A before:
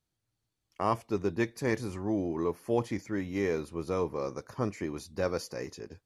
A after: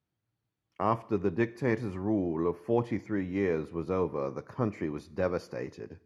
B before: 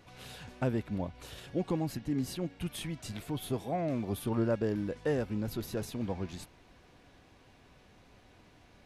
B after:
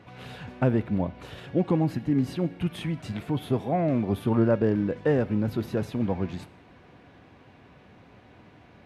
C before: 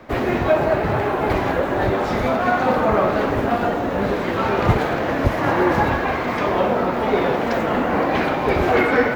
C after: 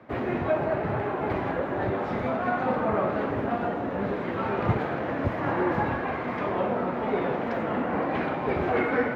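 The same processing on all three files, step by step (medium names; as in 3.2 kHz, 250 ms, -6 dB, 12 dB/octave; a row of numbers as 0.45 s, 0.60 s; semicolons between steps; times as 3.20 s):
high-pass 95 Hz 12 dB/octave; tone controls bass +3 dB, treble -15 dB; Schroeder reverb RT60 0.78 s, combs from 25 ms, DRR 19 dB; peak normalisation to -12 dBFS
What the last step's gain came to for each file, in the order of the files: +0.5 dB, +7.0 dB, -8.5 dB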